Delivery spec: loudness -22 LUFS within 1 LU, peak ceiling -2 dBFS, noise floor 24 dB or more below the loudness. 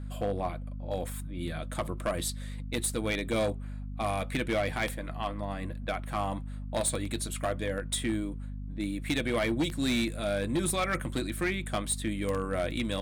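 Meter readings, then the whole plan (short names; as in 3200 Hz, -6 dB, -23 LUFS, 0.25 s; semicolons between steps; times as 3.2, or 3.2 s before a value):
clipped 1.4%; flat tops at -23.0 dBFS; hum 50 Hz; harmonics up to 250 Hz; hum level -36 dBFS; loudness -32.0 LUFS; peak -23.0 dBFS; loudness target -22.0 LUFS
-> clip repair -23 dBFS; notches 50/100/150/200/250 Hz; gain +10 dB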